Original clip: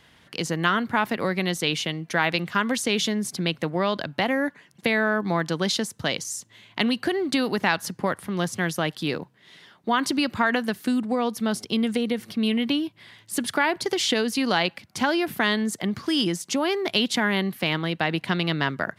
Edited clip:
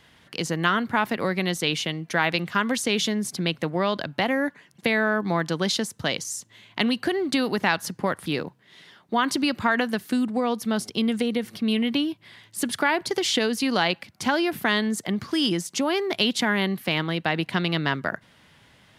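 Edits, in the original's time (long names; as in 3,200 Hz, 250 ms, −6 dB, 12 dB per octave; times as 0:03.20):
0:08.26–0:09.01: remove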